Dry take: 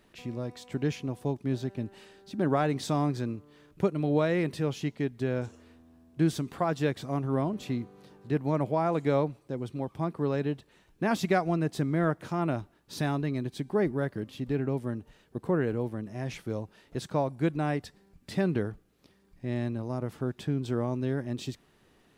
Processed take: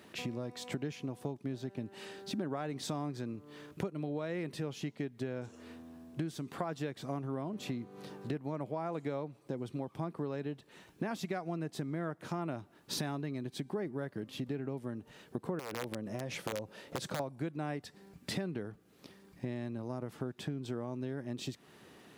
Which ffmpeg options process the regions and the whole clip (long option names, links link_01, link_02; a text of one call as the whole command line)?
ffmpeg -i in.wav -filter_complex "[0:a]asettb=1/sr,asplit=3[link_01][link_02][link_03];[link_01]atrim=end=15.594[link_04];[link_02]atrim=start=15.59:end=17.2,asetpts=PTS-STARTPTS,afade=type=in:duration=0.004:curve=qsin,afade=type=out:start_time=1.606:duration=0.004:curve=qsin,acompressor=threshold=-35dB:ratio=3:attack=3.2:release=140:knee=1:detection=peak,aeval=exprs='(mod(28.2*val(0)+1,2)-1)/28.2':channel_layout=same,equalizer=frequency=540:width=4.2:gain=8.5[link_05];[link_03]atrim=start=17.196[link_06];[link_04][link_05]acrossfade=duration=0.004:curve1=hsin:curve2=qsin[link_07];[link_07][link_06]acrossfade=duration=0.004:curve1=qsin:curve2=hsin,acompressor=threshold=-41dB:ratio=10,highpass=120,volume=7dB" out.wav